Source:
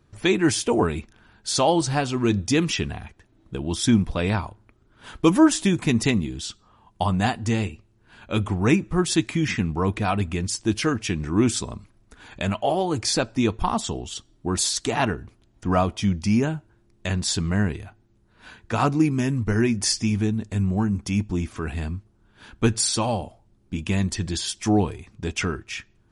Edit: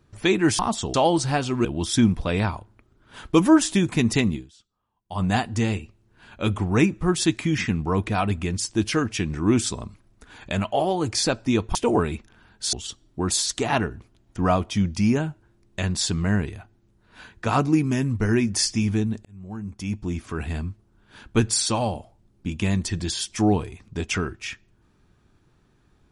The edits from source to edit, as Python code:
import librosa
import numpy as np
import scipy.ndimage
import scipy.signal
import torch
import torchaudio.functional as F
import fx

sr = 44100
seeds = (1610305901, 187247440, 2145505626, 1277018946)

y = fx.edit(x, sr, fx.swap(start_s=0.59, length_s=0.98, other_s=13.65, other_length_s=0.35),
    fx.cut(start_s=2.28, length_s=1.27),
    fx.fade_down_up(start_s=6.25, length_s=0.87, db=-22.0, fade_s=0.17, curve='qua'),
    fx.fade_in_span(start_s=20.52, length_s=1.16), tone=tone)